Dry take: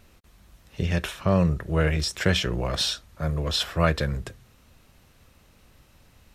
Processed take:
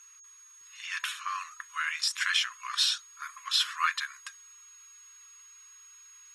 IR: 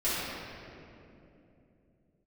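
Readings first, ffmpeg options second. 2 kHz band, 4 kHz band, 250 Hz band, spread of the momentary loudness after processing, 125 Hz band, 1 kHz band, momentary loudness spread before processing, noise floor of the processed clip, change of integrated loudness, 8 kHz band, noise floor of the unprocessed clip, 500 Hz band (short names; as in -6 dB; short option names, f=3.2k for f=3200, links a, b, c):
0.0 dB, 0.0 dB, under -40 dB, 16 LU, under -40 dB, -1.5 dB, 7 LU, -54 dBFS, -4.5 dB, +1.0 dB, -58 dBFS, under -40 dB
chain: -af "afftfilt=real='re*between(b*sr/4096,1000,12000)':imag='im*between(b*sr/4096,1000,12000)':win_size=4096:overlap=0.75,aeval=exprs='val(0)+0.00282*sin(2*PI*6600*n/s)':c=same" -ar 48000 -c:a libopus -b:a 24k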